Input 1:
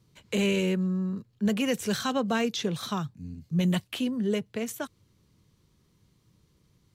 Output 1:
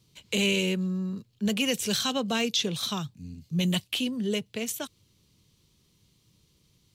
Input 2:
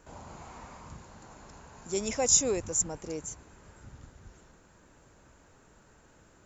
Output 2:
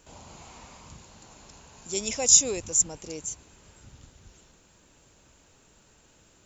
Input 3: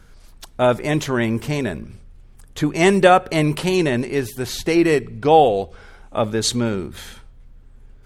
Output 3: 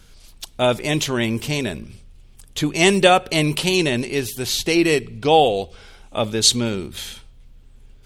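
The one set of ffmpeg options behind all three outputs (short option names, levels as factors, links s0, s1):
-af "highshelf=f=2200:t=q:w=1.5:g=7,volume=0.841"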